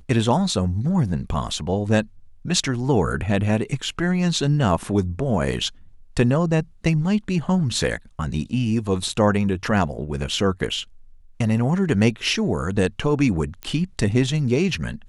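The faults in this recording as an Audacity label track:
13.630000	13.630000	click −16 dBFS

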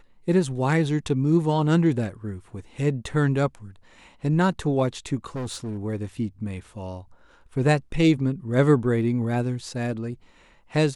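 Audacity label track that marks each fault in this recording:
5.350000	5.790000	clipping −27.5 dBFS

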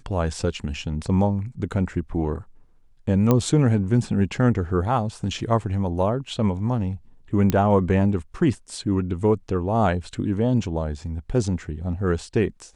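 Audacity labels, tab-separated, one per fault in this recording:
3.310000	3.310000	click −7 dBFS
7.500000	7.500000	click −8 dBFS

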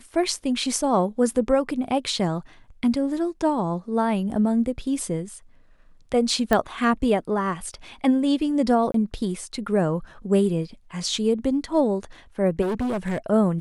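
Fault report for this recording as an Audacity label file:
6.530000	6.530000	click −8 dBFS
8.920000	8.940000	drop-out 23 ms
12.610000	13.180000	clipping −22.5 dBFS

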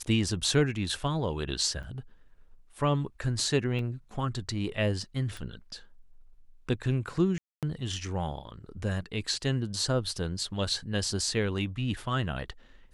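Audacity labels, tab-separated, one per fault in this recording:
1.830000	1.840000	drop-out 5.5 ms
3.790000	3.790000	drop-out 2.1 ms
5.370000	5.370000	click
7.380000	7.630000	drop-out 247 ms

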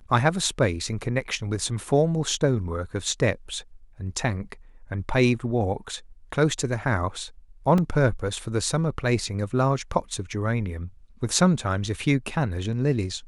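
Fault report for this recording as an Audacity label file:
7.780000	7.780000	drop-out 2.5 ms

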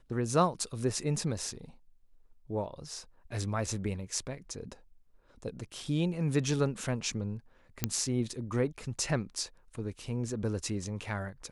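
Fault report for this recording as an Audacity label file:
7.840000	7.840000	click −11 dBFS

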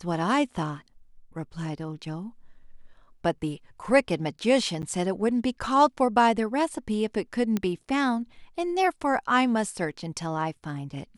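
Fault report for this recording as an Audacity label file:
4.820000	4.830000	drop-out 9.4 ms
7.570000	7.570000	click −14 dBFS

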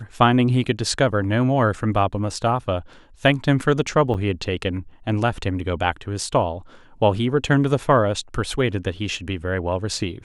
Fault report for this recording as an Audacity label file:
4.140000	4.150000	drop-out 6.2 ms

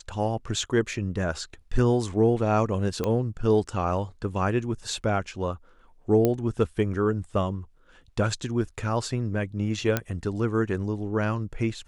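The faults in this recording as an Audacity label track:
3.040000	3.040000	click −14 dBFS
6.250000	6.250000	click −10 dBFS
9.970000	9.970000	click −9 dBFS

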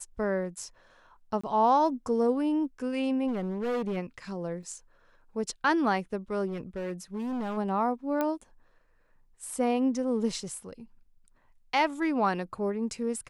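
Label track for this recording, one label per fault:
1.410000	1.440000	drop-out 25 ms
3.270000	3.980000	clipping −27 dBFS
4.630000	4.630000	drop-out 2.9 ms
6.470000	7.580000	clipping −30 dBFS
8.210000	8.210000	click −16 dBFS

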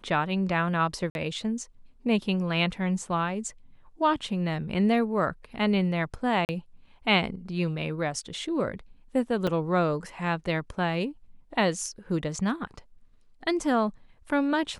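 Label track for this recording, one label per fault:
1.100000	1.150000	drop-out 51 ms
6.450000	6.490000	drop-out 39 ms
9.470000	9.470000	drop-out 5 ms

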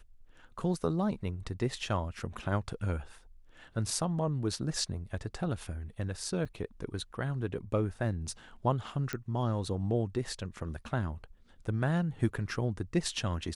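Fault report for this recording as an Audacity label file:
6.450000	6.460000	drop-out 5.7 ms
9.130000	9.130000	click −20 dBFS

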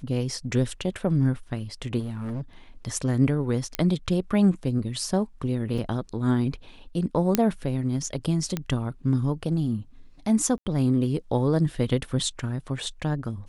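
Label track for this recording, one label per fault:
1.990000	2.420000	clipping −28 dBFS
3.750000	3.750000	click −9 dBFS
5.780000	5.780000	drop-out 4.3 ms
7.350000	7.350000	click −5 dBFS
8.570000	8.570000	click −13 dBFS
10.580000	10.660000	drop-out 80 ms

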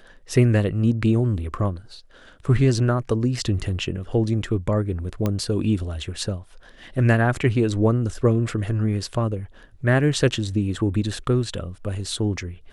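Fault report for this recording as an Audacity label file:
5.260000	5.260000	click −11 dBFS

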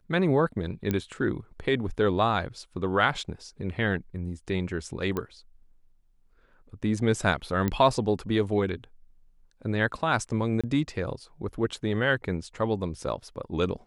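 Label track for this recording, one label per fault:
0.910000	0.910000	click −14 dBFS
5.170000	5.170000	click −17 dBFS
7.680000	7.680000	click −14 dBFS
10.610000	10.640000	drop-out 26 ms

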